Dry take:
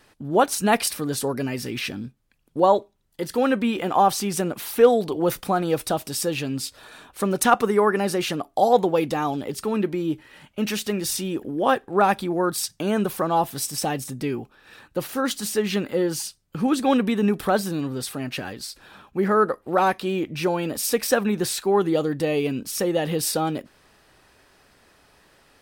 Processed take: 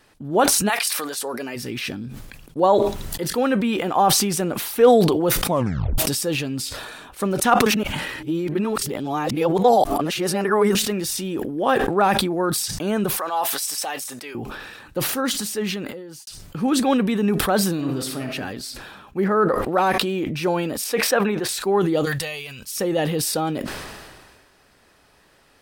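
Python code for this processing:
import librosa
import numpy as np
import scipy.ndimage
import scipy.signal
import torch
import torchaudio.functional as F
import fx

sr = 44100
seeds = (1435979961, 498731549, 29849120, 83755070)

y = fx.highpass(x, sr, hz=fx.line((0.68, 1200.0), (1.55, 330.0)), slope=12, at=(0.68, 1.55), fade=0.02)
y = fx.highpass(y, sr, hz=770.0, slope=12, at=(13.17, 14.35))
y = fx.reverb_throw(y, sr, start_s=17.73, length_s=0.58, rt60_s=0.84, drr_db=3.5)
y = fx.high_shelf(y, sr, hz=3500.0, db=-7.0, at=(19.24, 19.72))
y = fx.bass_treble(y, sr, bass_db=-12, treble_db=-11, at=(20.84, 21.49))
y = fx.tone_stack(y, sr, knobs='10-0-10', at=(22.04, 22.75), fade=0.02)
y = fx.edit(y, sr, fx.tape_stop(start_s=5.46, length_s=0.52),
    fx.reverse_span(start_s=7.66, length_s=3.09),
    fx.fade_out_span(start_s=15.4, length_s=0.87, curve='qua'), tone=tone)
y = fx.sustainer(y, sr, db_per_s=33.0)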